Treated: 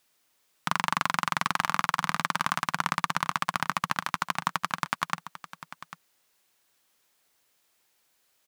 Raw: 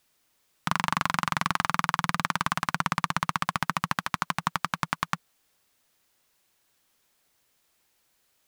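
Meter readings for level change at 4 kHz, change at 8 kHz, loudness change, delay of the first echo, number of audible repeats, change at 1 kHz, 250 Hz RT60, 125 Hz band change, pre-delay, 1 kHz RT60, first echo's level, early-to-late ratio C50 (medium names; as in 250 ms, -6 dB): 0.0 dB, 0.0 dB, -0.5 dB, 796 ms, 1, 0.0 dB, no reverb, -5.0 dB, no reverb, no reverb, -14.5 dB, no reverb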